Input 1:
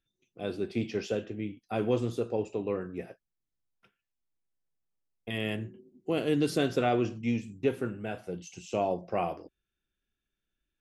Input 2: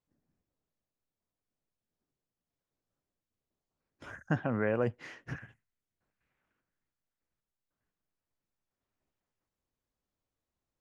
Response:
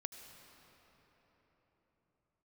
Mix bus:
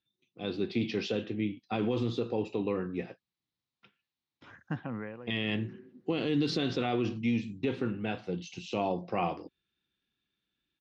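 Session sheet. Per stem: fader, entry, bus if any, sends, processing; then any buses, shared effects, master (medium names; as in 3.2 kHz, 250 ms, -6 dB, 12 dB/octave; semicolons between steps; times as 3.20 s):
-1.0 dB, 0.00 s, no send, none
-9.5 dB, 0.40 s, send -24 dB, gate with hold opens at -55 dBFS; auto duck -14 dB, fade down 0.30 s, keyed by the first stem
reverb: on, pre-delay 71 ms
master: cabinet simulation 110–5000 Hz, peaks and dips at 410 Hz -4 dB, 620 Hz -9 dB, 1.5 kHz -5 dB, 3.9 kHz +6 dB; level rider gain up to 6 dB; peak limiter -20.5 dBFS, peak gain reduction 8.5 dB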